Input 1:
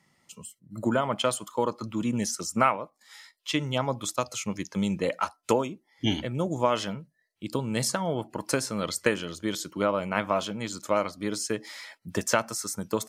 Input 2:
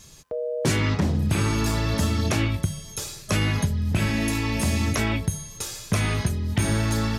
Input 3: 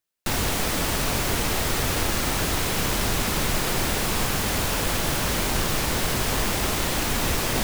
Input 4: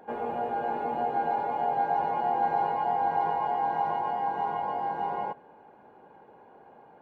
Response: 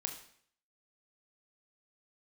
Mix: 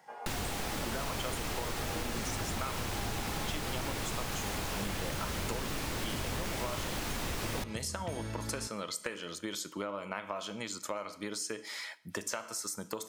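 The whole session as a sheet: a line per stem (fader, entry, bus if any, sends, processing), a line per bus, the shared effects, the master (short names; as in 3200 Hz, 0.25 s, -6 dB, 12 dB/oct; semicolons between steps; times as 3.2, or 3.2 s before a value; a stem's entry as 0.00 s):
0.0 dB, 0.00 s, bus A, send -12 dB, low shelf 250 Hz -11.5 dB
-15.0 dB, 1.50 s, no bus, no send, dry
-5.5 dB, 0.00 s, no bus, no send, slew limiter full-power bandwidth 280 Hz
-7.0 dB, 0.00 s, bus A, no send, HPF 810 Hz
bus A: 0.0 dB, compressor, threshold -36 dBFS, peak gain reduction 17 dB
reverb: on, RT60 0.60 s, pre-delay 20 ms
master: compressor 4:1, threshold -33 dBFS, peak gain reduction 9 dB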